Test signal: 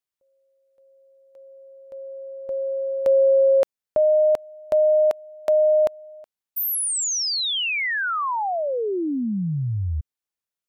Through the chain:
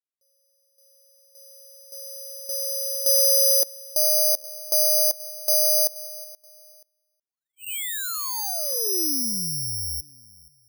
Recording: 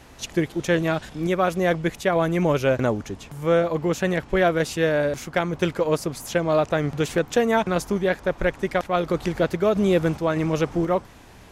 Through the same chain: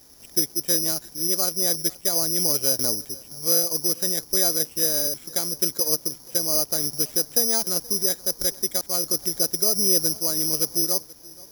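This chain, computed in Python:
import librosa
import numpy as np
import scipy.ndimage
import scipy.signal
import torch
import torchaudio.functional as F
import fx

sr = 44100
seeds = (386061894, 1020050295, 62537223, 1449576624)

p1 = fx.peak_eq(x, sr, hz=340.0, db=6.5, octaves=1.5)
p2 = p1 + fx.echo_feedback(p1, sr, ms=478, feedback_pct=34, wet_db=-22.0, dry=0)
p3 = (np.kron(scipy.signal.resample_poly(p2, 1, 8), np.eye(8)[0]) * 8)[:len(p2)]
y = F.gain(torch.from_numpy(p3), -14.5).numpy()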